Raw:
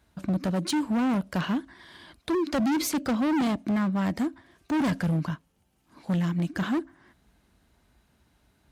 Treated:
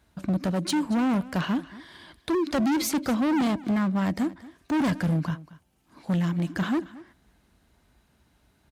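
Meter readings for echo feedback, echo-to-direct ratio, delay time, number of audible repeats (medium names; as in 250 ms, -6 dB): no regular repeats, -19.0 dB, 229 ms, 1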